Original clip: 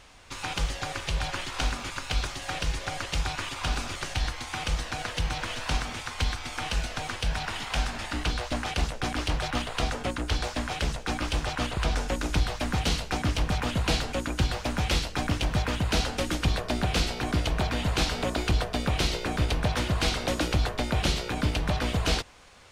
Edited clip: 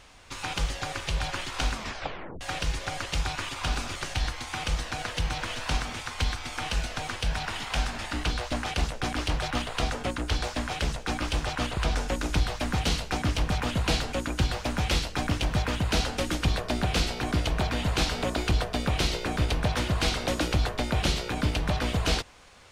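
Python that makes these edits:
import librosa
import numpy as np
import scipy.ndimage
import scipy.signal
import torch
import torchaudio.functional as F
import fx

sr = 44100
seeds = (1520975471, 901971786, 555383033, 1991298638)

y = fx.edit(x, sr, fx.tape_stop(start_s=1.74, length_s=0.67), tone=tone)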